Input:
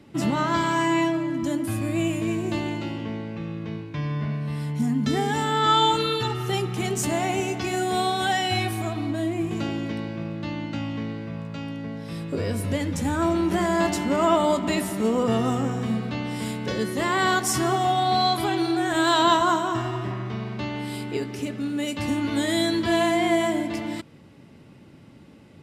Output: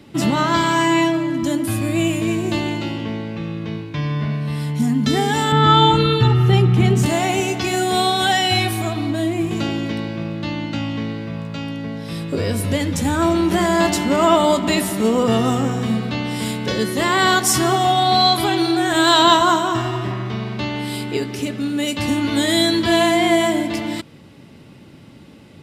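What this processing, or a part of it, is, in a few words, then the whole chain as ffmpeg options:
presence and air boost: -filter_complex "[0:a]asettb=1/sr,asplit=3[a][b][c];[a]atrim=end=5.524[d];[b]atrim=start=5.52:end=7.06,asetpts=PTS-STARTPTS,afade=t=in:d=0.004:c=qsin,afade=t=out:st=1.536:d=0.004:c=qsin,bass=f=250:g=12,treble=f=4k:g=-12[e];[c]atrim=start=7.056[f];[d][e]acrossfade=d=0.004:c1=hsin:c2=qsin[g];[g][f]acrossfade=d=0.004:c1=qsin:c2=hsin,equalizer=f=3.7k:t=o:w=0.96:g=4,highshelf=f=9.7k:g=5.5,volume=5.5dB"

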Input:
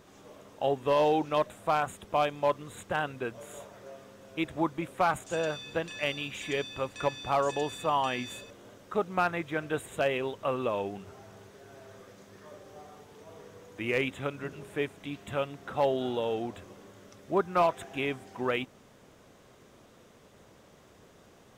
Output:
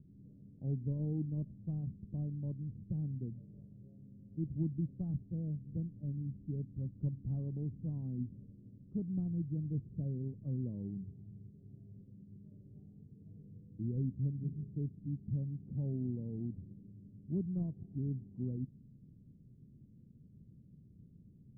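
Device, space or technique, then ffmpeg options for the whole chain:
the neighbour's flat through the wall: -af "lowpass=f=230:w=0.5412,lowpass=f=230:w=1.3066,equalizer=f=140:t=o:w=0.86:g=6.5,volume=1dB"

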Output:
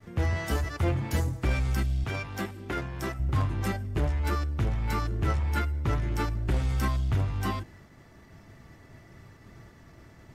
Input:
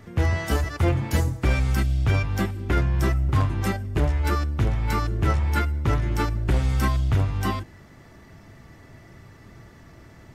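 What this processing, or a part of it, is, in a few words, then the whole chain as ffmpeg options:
parallel distortion: -filter_complex "[0:a]asplit=2[a][b];[b]asoftclip=type=hard:threshold=-27.5dB,volume=-6.5dB[c];[a][c]amix=inputs=2:normalize=0,asettb=1/sr,asplit=3[d][e][f];[d]atrim=end=2.044[g];[e]atrim=start=2.04:end=3.2,asetpts=PTS-STARTPTS,afade=t=in:d=0.004:c=qsin,afade=t=out:st=1.156:d=0.004:c=qsin,highpass=f=250:p=1[h];[f]atrim=start=3.196[i];[g][h]acrossfade=d=0.004:c1=hsin:c2=qsin[j];[j][i]acrossfade=d=0.004:c1=qsin:c2=hsin,agate=range=-33dB:threshold=-42dB:ratio=3:detection=peak,volume=-6.5dB"

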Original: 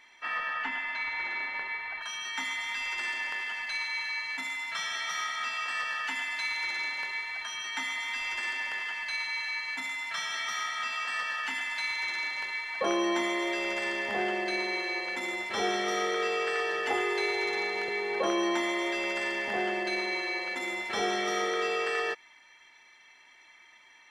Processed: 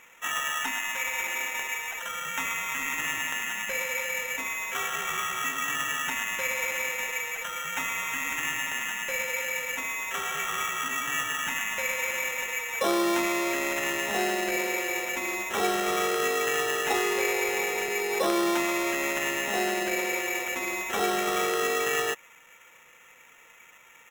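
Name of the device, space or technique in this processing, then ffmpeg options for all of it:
crushed at another speed: -af "asetrate=35280,aresample=44100,acrusher=samples=12:mix=1:aa=0.000001,asetrate=55125,aresample=44100,volume=3dB"

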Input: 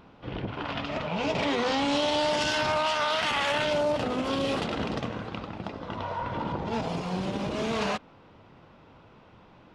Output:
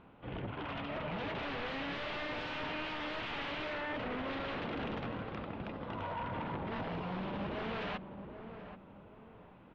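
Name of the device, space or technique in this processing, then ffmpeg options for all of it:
synthesiser wavefolder: -filter_complex "[0:a]aeval=exprs='0.0398*(abs(mod(val(0)/0.0398+3,4)-2)-1)':c=same,lowpass=f=3.2k:w=0.5412,lowpass=f=3.2k:w=1.3066,asettb=1/sr,asplit=3[a][b][c];[a]atrim=end=4.774[d];[b]atrim=start=4.77:end=6.13,asetpts=PTS-STARTPTS,afade=t=in:d=0.004:c=qsin,afade=t=out:st=1.356:d=0.004:c=qsin,highshelf=f=6.9k:g=9.5[e];[c]atrim=start=6.126[f];[d][e]acrossfade=d=0.004:c1=hsin:c2=qsin[g];[g][f]acrossfade=d=0.004:c1=qsin:c2=hsin,asplit=2[h][i];[i]adelay=781,lowpass=f=920:p=1,volume=-8dB,asplit=2[j][k];[k]adelay=781,lowpass=f=920:p=1,volume=0.38,asplit=2[l][m];[m]adelay=781,lowpass=f=920:p=1,volume=0.38,asplit=2[n][o];[o]adelay=781,lowpass=f=920:p=1,volume=0.38[p];[h][j][l][n][p]amix=inputs=5:normalize=0,volume=-5.5dB"

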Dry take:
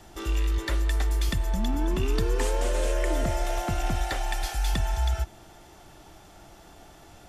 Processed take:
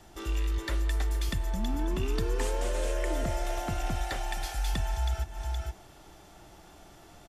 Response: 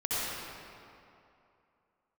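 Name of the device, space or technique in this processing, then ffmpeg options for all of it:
ducked delay: -filter_complex "[0:a]asplit=3[a][b][c];[b]adelay=469,volume=-3.5dB[d];[c]apad=whole_len=341744[e];[d][e]sidechaincompress=threshold=-39dB:ratio=8:attack=16:release=174[f];[a][f]amix=inputs=2:normalize=0,volume=-4dB"

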